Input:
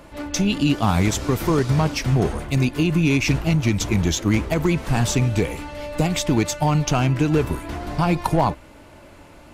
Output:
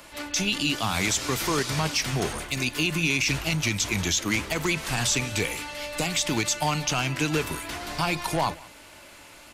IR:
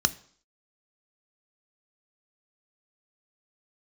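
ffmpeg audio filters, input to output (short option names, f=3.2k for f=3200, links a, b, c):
-filter_complex "[0:a]acrossover=split=9800[a][b];[b]acompressor=threshold=-47dB:ratio=4:attack=1:release=60[c];[a][c]amix=inputs=2:normalize=0,tiltshelf=f=1.3k:g=-8.5,acrossover=split=180[d][e];[d]flanger=delay=19:depth=7.2:speed=0.54[f];[e]alimiter=limit=-14.5dB:level=0:latency=1:release=28[g];[f][g]amix=inputs=2:normalize=0,aecho=1:1:182:0.0708"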